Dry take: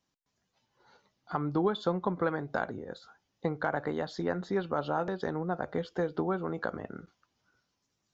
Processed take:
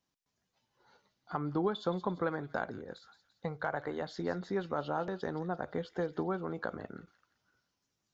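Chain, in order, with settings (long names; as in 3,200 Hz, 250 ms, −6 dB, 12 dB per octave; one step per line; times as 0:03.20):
0:02.92–0:04.00: parametric band 710 Hz → 170 Hz −12 dB 0.52 octaves
delay with a high-pass on its return 171 ms, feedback 46%, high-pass 2,700 Hz, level −10.5 dB
level −3.5 dB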